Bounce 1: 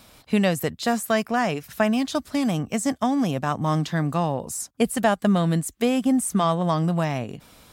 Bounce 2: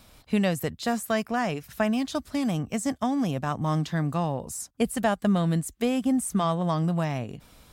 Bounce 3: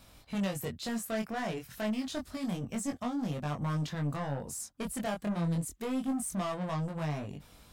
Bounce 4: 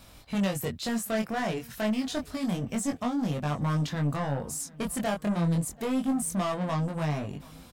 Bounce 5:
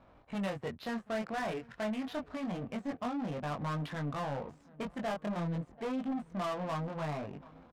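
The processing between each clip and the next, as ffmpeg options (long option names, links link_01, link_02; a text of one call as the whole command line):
ffmpeg -i in.wav -af "lowshelf=frequency=78:gain=11,volume=-4.5dB" out.wav
ffmpeg -i in.wav -af "asoftclip=type=tanh:threshold=-27dB,flanger=delay=20:depth=3.7:speed=0.28" out.wav
ffmpeg -i in.wav -filter_complex "[0:a]asplit=2[link_01][link_02];[link_02]adelay=735,lowpass=frequency=3600:poles=1,volume=-23.5dB,asplit=2[link_03][link_04];[link_04]adelay=735,lowpass=frequency=3600:poles=1,volume=0.54,asplit=2[link_05][link_06];[link_06]adelay=735,lowpass=frequency=3600:poles=1,volume=0.54,asplit=2[link_07][link_08];[link_08]adelay=735,lowpass=frequency=3600:poles=1,volume=0.54[link_09];[link_01][link_03][link_05][link_07][link_09]amix=inputs=5:normalize=0,volume=5dB" out.wav
ffmpeg -i in.wav -filter_complex "[0:a]asplit=2[link_01][link_02];[link_02]highpass=frequency=720:poles=1,volume=14dB,asoftclip=type=tanh:threshold=-21dB[link_03];[link_01][link_03]amix=inputs=2:normalize=0,lowpass=frequency=2400:poles=1,volume=-6dB,adynamicsmooth=sensitivity=7:basefreq=800,volume=-6.5dB" out.wav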